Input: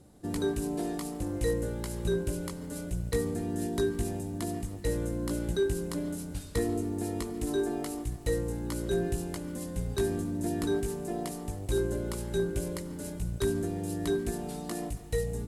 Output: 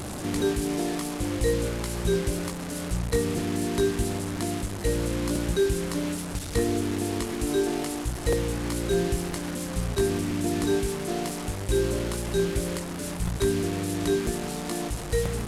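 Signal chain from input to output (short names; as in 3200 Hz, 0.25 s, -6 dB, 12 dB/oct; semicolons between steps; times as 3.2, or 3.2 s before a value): delta modulation 64 kbps, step -33 dBFS; crackling interface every 0.99 s, samples 256, repeat, from 0.4; gain +4.5 dB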